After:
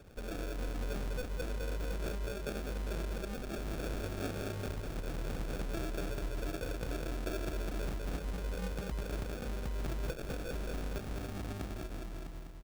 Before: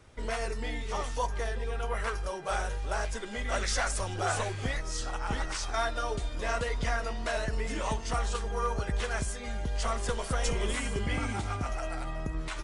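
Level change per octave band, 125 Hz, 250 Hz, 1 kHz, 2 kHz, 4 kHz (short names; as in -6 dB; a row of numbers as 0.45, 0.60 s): -5.0, -1.5, -14.0, -11.0, -10.0 dB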